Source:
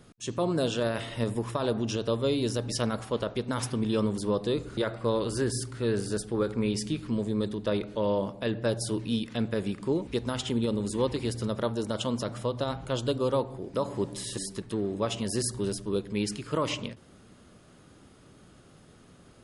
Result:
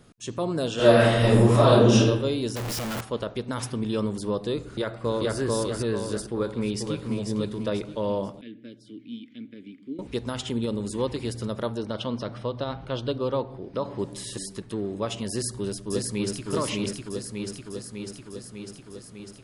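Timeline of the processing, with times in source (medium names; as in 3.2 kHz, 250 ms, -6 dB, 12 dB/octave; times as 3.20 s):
0.75–1.98 s: reverb throw, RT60 0.98 s, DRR -12 dB
2.56–3.01 s: one-bit comparator
4.60–5.38 s: echo throw 440 ms, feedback 45%, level 0 dB
6.28–7.19 s: echo throw 490 ms, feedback 35%, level -6 dB
8.41–9.99 s: vowel filter i
11.78–13.99 s: Savitzky-Golay filter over 15 samples
15.30–16.48 s: echo throw 600 ms, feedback 70%, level -1.5 dB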